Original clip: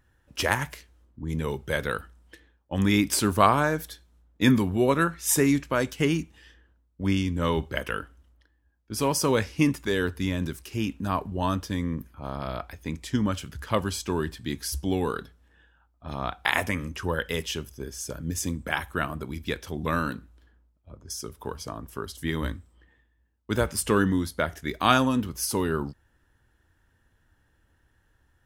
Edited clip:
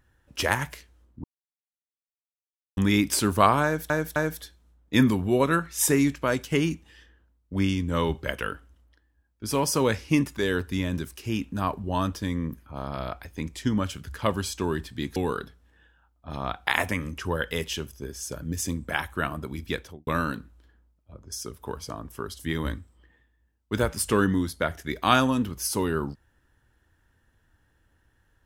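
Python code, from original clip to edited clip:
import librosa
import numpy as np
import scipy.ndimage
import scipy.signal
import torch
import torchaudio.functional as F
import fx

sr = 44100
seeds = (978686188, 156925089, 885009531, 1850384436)

y = fx.studio_fade_out(x, sr, start_s=19.54, length_s=0.31)
y = fx.edit(y, sr, fx.silence(start_s=1.24, length_s=1.53),
    fx.repeat(start_s=3.64, length_s=0.26, count=3),
    fx.cut(start_s=14.64, length_s=0.3), tone=tone)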